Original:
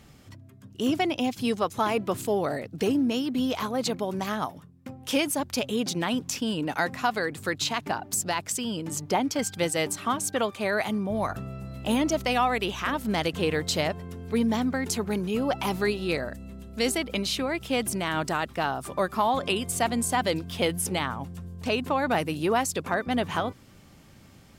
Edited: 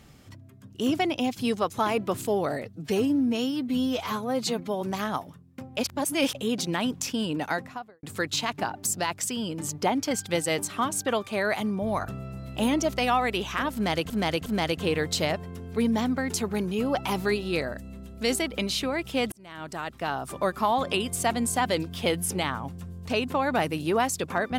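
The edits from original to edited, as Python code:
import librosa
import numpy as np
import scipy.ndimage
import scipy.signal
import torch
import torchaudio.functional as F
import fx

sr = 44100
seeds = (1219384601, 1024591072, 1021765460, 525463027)

y = fx.studio_fade_out(x, sr, start_s=6.65, length_s=0.66)
y = fx.edit(y, sr, fx.stretch_span(start_s=2.65, length_s=1.44, factor=1.5),
    fx.reverse_span(start_s=5.05, length_s=0.58),
    fx.repeat(start_s=13.02, length_s=0.36, count=3),
    fx.fade_in_span(start_s=17.88, length_s=1.0), tone=tone)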